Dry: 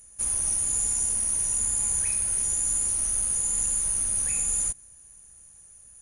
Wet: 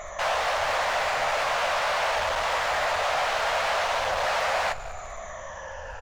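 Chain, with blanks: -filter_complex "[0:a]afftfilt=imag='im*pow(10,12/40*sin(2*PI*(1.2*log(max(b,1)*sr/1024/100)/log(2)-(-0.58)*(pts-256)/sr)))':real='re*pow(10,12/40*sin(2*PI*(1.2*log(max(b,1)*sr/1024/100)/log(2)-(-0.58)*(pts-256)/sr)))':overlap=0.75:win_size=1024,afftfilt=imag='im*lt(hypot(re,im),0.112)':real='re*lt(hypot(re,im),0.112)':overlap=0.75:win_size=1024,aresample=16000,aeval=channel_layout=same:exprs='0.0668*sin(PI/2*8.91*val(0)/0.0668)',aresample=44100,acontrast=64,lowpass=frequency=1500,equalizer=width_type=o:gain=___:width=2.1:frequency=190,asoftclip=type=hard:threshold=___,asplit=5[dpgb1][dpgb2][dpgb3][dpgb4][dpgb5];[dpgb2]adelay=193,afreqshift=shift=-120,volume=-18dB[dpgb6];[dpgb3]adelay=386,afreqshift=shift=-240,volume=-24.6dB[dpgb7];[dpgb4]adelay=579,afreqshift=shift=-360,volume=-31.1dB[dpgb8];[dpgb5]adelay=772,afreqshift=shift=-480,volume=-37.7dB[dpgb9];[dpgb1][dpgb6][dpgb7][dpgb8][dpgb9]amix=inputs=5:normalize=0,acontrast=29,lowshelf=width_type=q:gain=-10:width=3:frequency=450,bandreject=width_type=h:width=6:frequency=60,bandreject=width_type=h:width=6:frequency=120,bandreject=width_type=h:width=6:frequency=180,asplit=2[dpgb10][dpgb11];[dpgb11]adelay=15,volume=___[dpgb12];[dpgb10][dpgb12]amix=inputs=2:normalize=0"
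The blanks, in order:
-11, -30.5dB, -10.5dB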